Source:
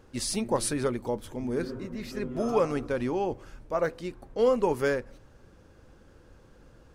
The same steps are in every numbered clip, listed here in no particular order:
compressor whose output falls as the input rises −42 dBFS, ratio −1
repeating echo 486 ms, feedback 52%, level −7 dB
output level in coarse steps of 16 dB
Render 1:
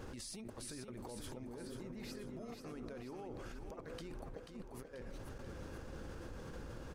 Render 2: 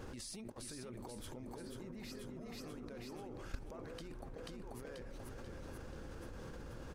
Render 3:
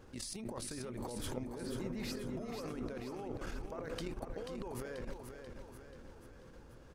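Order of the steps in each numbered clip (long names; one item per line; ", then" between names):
compressor whose output falls as the input rises, then output level in coarse steps, then repeating echo
compressor whose output falls as the input rises, then repeating echo, then output level in coarse steps
output level in coarse steps, then compressor whose output falls as the input rises, then repeating echo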